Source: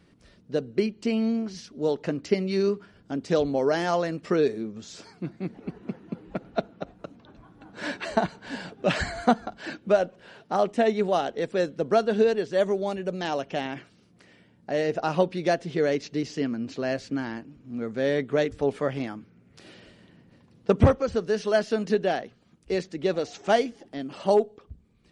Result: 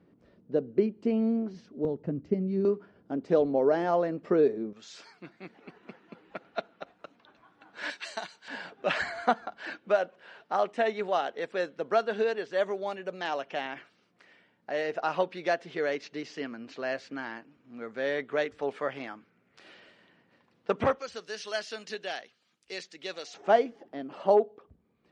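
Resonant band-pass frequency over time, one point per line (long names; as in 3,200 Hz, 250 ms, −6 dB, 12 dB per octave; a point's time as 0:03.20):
resonant band-pass, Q 0.62
390 Hz
from 0:01.85 130 Hz
from 0:02.65 490 Hz
from 0:04.73 2,100 Hz
from 0:07.90 5,400 Hz
from 0:08.48 1,500 Hz
from 0:20.99 4,000 Hz
from 0:23.34 760 Hz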